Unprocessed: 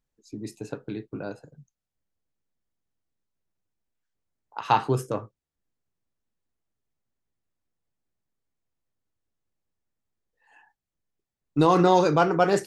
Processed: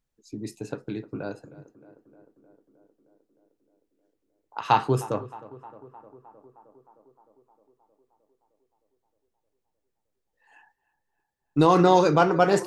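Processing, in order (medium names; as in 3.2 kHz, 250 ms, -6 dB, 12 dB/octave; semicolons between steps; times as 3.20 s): tape echo 309 ms, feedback 79%, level -17 dB, low-pass 1.7 kHz; trim +1 dB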